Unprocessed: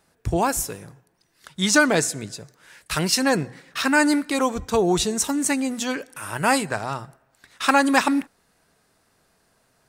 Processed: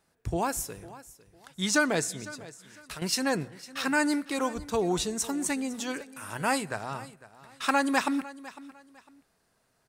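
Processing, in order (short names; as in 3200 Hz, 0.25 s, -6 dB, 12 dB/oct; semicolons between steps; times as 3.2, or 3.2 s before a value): 2.21–3.02 compressor 10:1, threshold -31 dBFS, peak gain reduction 11.5 dB; feedback echo 0.503 s, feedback 27%, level -18 dB; gain -7.5 dB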